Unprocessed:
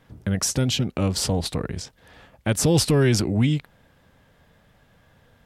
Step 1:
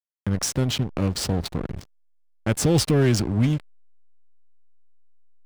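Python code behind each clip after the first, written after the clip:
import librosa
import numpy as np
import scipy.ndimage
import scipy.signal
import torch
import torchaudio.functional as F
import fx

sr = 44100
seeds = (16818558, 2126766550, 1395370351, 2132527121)

y = fx.backlash(x, sr, play_db=-23.0)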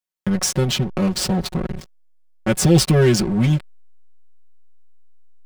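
y = x + 0.99 * np.pad(x, (int(5.4 * sr / 1000.0), 0))[:len(x)]
y = F.gain(torch.from_numpy(y), 2.0).numpy()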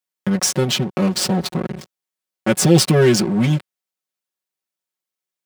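y = scipy.signal.sosfilt(scipy.signal.butter(2, 150.0, 'highpass', fs=sr, output='sos'), x)
y = F.gain(torch.from_numpy(y), 2.5).numpy()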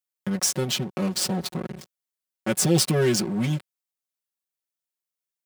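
y = fx.high_shelf(x, sr, hz=5900.0, db=7.0)
y = F.gain(torch.from_numpy(y), -8.0).numpy()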